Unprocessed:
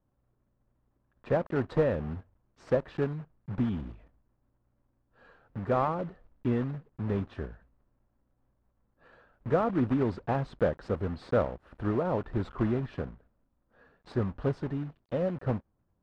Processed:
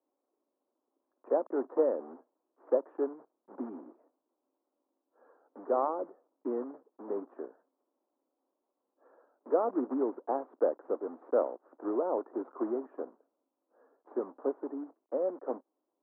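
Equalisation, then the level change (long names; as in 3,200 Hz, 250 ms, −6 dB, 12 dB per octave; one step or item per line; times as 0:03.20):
Butterworth high-pass 280 Hz 48 dB per octave
low-pass filter 1,100 Hz 24 dB per octave
high-frequency loss of the air 160 metres
0.0 dB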